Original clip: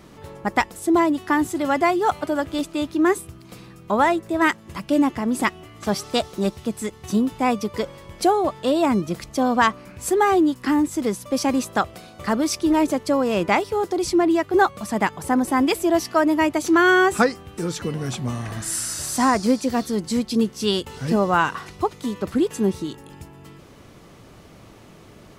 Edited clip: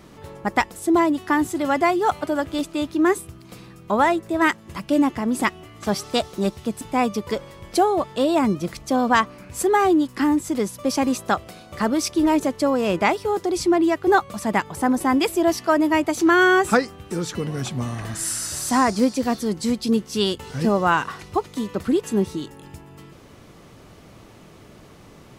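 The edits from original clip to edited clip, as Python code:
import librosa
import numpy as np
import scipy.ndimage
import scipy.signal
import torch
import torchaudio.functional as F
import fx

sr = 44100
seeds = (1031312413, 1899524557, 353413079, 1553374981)

y = fx.edit(x, sr, fx.cut(start_s=6.81, length_s=0.47), tone=tone)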